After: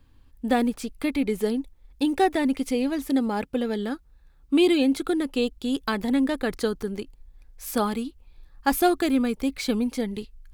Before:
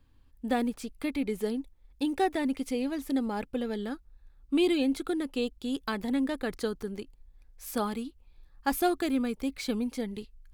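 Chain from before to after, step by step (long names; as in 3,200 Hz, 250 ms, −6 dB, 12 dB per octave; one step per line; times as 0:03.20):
0:03.06–0:05.01: high-pass filter 52 Hz 6 dB per octave
level +6 dB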